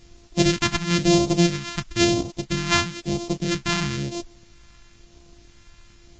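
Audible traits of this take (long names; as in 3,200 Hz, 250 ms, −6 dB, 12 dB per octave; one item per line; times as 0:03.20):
a buzz of ramps at a fixed pitch in blocks of 128 samples
phaser sweep stages 2, 1 Hz, lowest notch 470–1,600 Hz
a quantiser's noise floor 10 bits, dither triangular
Ogg Vorbis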